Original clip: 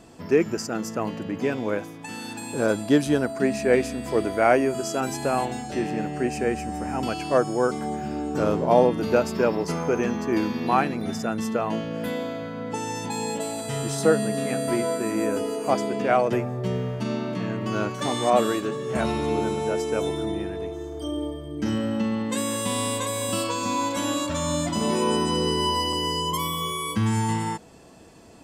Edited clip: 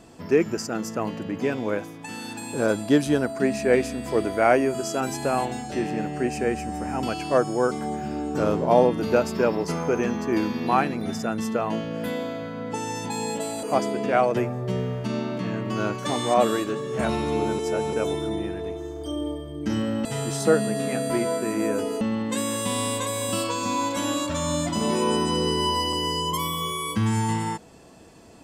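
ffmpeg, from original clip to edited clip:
-filter_complex "[0:a]asplit=6[a][b][c][d][e][f];[a]atrim=end=13.632[g];[b]atrim=start=15.588:end=19.552[h];[c]atrim=start=19.548:end=19.892,asetpts=PTS-STARTPTS,areverse[i];[d]atrim=start=19.888:end=22.012[j];[e]atrim=start=13.628:end=15.592[k];[f]atrim=start=22.008[l];[g][h]acrossfade=d=0.004:c1=hsin:c2=hsin[m];[m][i]acrossfade=d=0.004:c1=hsin:c2=hsin[n];[n][j]acrossfade=d=0.004:c1=hsin:c2=hsin[o];[o][k]acrossfade=d=0.004:c1=hsin:c2=hsin[p];[p][l]acrossfade=d=0.004:c1=hsin:c2=hsin"

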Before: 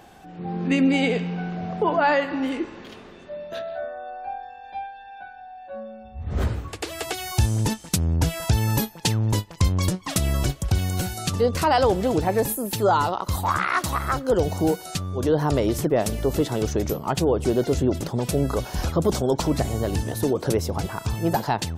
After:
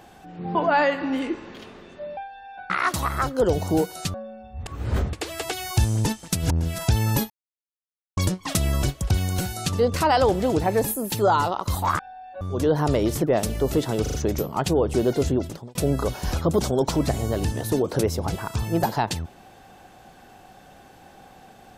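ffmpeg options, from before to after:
-filter_complex "[0:a]asplit=17[a][b][c][d][e][f][g][h][i][j][k][l][m][n][o][p][q];[a]atrim=end=0.552[r];[b]atrim=start=1.848:end=3.472[s];[c]atrim=start=4.798:end=5.332[t];[d]atrim=start=13.598:end=15.042[u];[e]atrim=start=5.748:end=6.272[v];[f]atrim=start=6.268:end=6.742,asetpts=PTS-STARTPTS,areverse[w];[g]atrim=start=6.738:end=8.14[x];[h]atrim=start=7.9:end=8.43,asetpts=PTS-STARTPTS,areverse[y];[i]atrim=start=8.19:end=8.91,asetpts=PTS-STARTPTS,afade=t=out:st=0.716:d=0.004:c=hsin[z];[j]atrim=start=8.91:end=9.78,asetpts=PTS-STARTPTS,volume=0[aa];[k]atrim=start=9.78:end=13.602,asetpts=PTS-STARTPTS,afade=t=in:d=0.004:c=hsin[ab];[l]atrim=start=5.328:end=5.752[ac];[m]atrim=start=15.038:end=16.692[ad];[n]atrim=start=16.648:end=16.692[ae];[o]atrim=start=16.648:end=16.692[af];[p]atrim=start=16.648:end=18.26,asetpts=PTS-STARTPTS,afade=t=out:st=1.142:d=0.47[ag];[q]atrim=start=18.26,asetpts=PTS-STARTPTS,afade=t=in:d=0.004:c=hsin[ah];[r][s]acrossfade=d=0.004:c1=hsin:c2=hsin[ai];[ai][t]acrossfade=d=0.004:c1=hsin:c2=hsin[aj];[aj][u]acrossfade=d=0.004:c1=hsin:c2=hsin[ak];[ak][v]acrossfade=d=0.004:c1=hsin:c2=hsin[al];[al][w]acrossfade=d=0.004:c1=hsin:c2=hsin[am];[am][x]acrossfade=d=0.004:c1=hsin:c2=hsin[an];[an][y]acrossfade=d=0.24:c1=tri:c2=tri[ao];[z][aa][ab]concat=n=3:v=0:a=1[ap];[ao][ap]acrossfade=d=0.24:c1=tri:c2=tri[aq];[aq][ac]acrossfade=d=0.004:c1=hsin:c2=hsin[ar];[ar][ad]acrossfade=d=0.004:c1=hsin:c2=hsin[as];[as][ae]acrossfade=d=0.004:c1=hsin:c2=hsin[at];[at][af]acrossfade=d=0.004:c1=hsin:c2=hsin[au];[ag][ah]concat=n=2:v=0:a=1[av];[au][av]acrossfade=d=0.004:c1=hsin:c2=hsin"

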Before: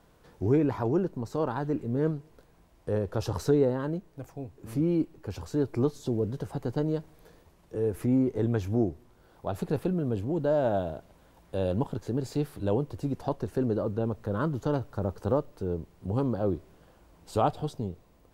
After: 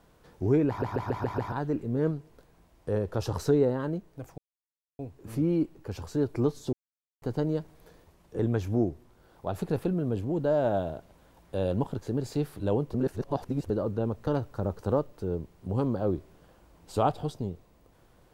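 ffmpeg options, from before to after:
-filter_complex "[0:a]asplit=14[a][b][c][d][e][f][g][h][i][j][k][l][m][n];[a]atrim=end=0.822[o];[b]atrim=start=0.678:end=0.822[p];[c]atrim=start=0.678:end=0.822[q];[d]atrim=start=0.678:end=0.822[r];[e]atrim=start=0.678:end=0.822[s];[f]atrim=start=0.678:end=0.822[t];[g]atrim=start=1.518:end=4.38,asetpts=PTS-STARTPTS,afade=t=out:st=2.858:d=0.004:c=hsin,apad=pad_dur=0.61[u];[h]atrim=start=4.38:end=6.12,asetpts=PTS-STARTPTS,afade=t=in:d=0.004:c=hsin,afade=t=out:st=1.736:d=0.004:c=hsin[v];[i]atrim=start=6.12:end=6.61,asetpts=PTS-STARTPTS,volume=0[w];[j]atrim=start=6.61:end=7.782,asetpts=PTS-STARTPTS,afade=t=in:d=0.004:c=hsin[x];[k]atrim=start=8.388:end=12.942[y];[l]atrim=start=12.938:end=13.702,asetpts=PTS-STARTPTS,areverse[z];[m]atrim=start=13.698:end=14.272[aa];[n]atrim=start=14.658[ab];[o][p]acrossfade=d=0.004:c1=hsin:c2=hsin[ac];[ac][q]acrossfade=d=0.004:c1=hsin:c2=hsin[ad];[ad][r]acrossfade=d=0.004:c1=hsin:c2=hsin[ae];[ae][s]acrossfade=d=0.004:c1=hsin:c2=hsin[af];[af][t]acrossfade=d=0.004:c1=hsin:c2=hsin[ag];[u][v][w][x]concat=n=4:v=0:a=1[ah];[ag][ah]acrossfade=d=0.004:c1=hsin:c2=hsin[ai];[ai][y]acrossfade=d=0.004:c1=hsin:c2=hsin[aj];[aj][z]acrossfade=d=0.004:c1=hsin:c2=hsin[ak];[ak][aa]acrossfade=d=0.004:c1=hsin:c2=hsin[al];[al][ab]acrossfade=d=0.004:c1=hsin:c2=hsin"

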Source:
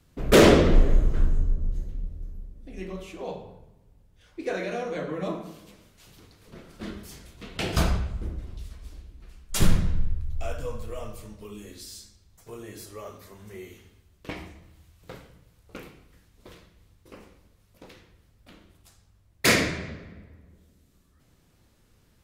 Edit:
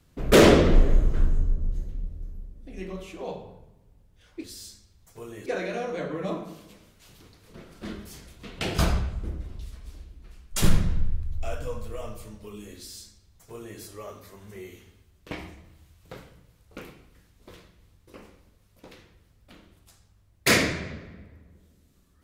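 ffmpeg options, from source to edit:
-filter_complex "[0:a]asplit=3[a][b][c];[a]atrim=end=4.442[d];[b]atrim=start=11.748:end=12.772[e];[c]atrim=start=4.438[f];[d][e]acrossfade=d=0.004:c1=hsin:c2=hsin[g];[g][f]acrossfade=d=0.004:c1=hsin:c2=hsin"

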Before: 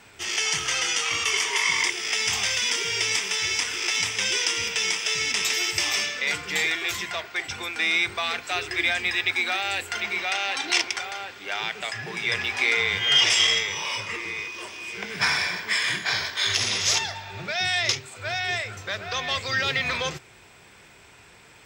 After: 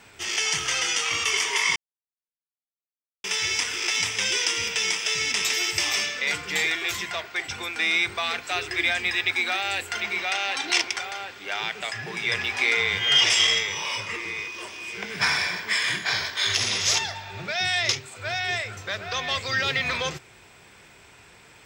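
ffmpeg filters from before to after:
-filter_complex "[0:a]asplit=3[a][b][c];[a]atrim=end=1.76,asetpts=PTS-STARTPTS,afade=t=out:st=1.756:d=0.004:c=hsin[d];[b]atrim=start=1.76:end=3.24,asetpts=PTS-STARTPTS,volume=0[e];[c]atrim=start=3.24,asetpts=PTS-STARTPTS,afade=t=in:d=0.004:c=hsin[f];[d][e][f]concat=n=3:v=0:a=1"

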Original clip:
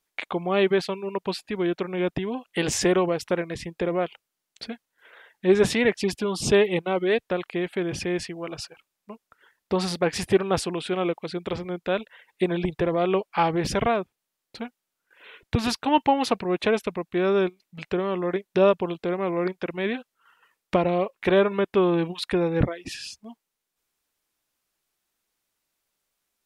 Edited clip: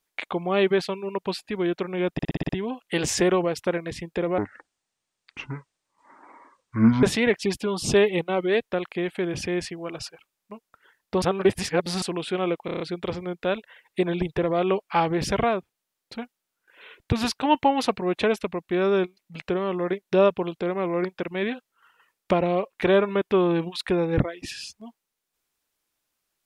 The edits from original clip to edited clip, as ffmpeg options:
-filter_complex "[0:a]asplit=16[a][b][c][d][e][f][g][h][i][j][k][l][m][n][o][p];[a]atrim=end=2.192[q];[b]atrim=start=2.128:end=2.192[r];[c]atrim=start=2.128:end=2.192[s];[d]atrim=start=2.128:end=2.192[t];[e]atrim=start=2.128:end=2.192[u];[f]atrim=start=2.128:end=2.192[v];[g]atrim=start=2.128:end=4.024[w];[h]atrim=start=4.02:end=5.61,asetpts=PTS-STARTPTS,asetrate=26460,aresample=44100[x];[i]atrim=start=5.606:end=9.802[y];[j]atrim=start=9.798:end=10.602,asetpts=PTS-STARTPTS,areverse[z];[k]atrim=start=10.598:end=11.262[aa];[l]atrim=start=11.228:end=11.262[ab];[m]atrim=start=11.228:end=11.262[ac];[n]atrim=start=11.228:end=11.262[ad];[o]atrim=start=11.228:end=11.262[ae];[p]atrim=start=11.228[af];[q][r]acrossfade=d=0.004:c1=hsin:c2=hsin[ag];[ag][s]acrossfade=d=0.004:c1=hsin:c2=hsin[ah];[ah][t]acrossfade=d=0.004:c1=hsin:c2=hsin[ai];[ai][u]acrossfade=d=0.004:c1=hsin:c2=hsin[aj];[aj][v]acrossfade=d=0.004:c1=hsin:c2=hsin[ak];[ak][w]acrossfade=d=0.004:c1=hsin:c2=hsin[al];[al][x]acrossfade=d=0.004:c1=hsin:c2=hsin[am];[am][y]acrossfade=d=0.004:c1=hsin:c2=hsin[an];[an][z]acrossfade=d=0.004:c1=hsin:c2=hsin[ao];[ao][aa]acrossfade=d=0.004:c1=hsin:c2=hsin[ap];[ap][ab]acrossfade=d=0.004:c1=hsin:c2=hsin[aq];[aq][ac]acrossfade=d=0.004:c1=hsin:c2=hsin[ar];[ar][ad]acrossfade=d=0.004:c1=hsin:c2=hsin[as];[as][ae]acrossfade=d=0.004:c1=hsin:c2=hsin[at];[at][af]acrossfade=d=0.004:c1=hsin:c2=hsin"

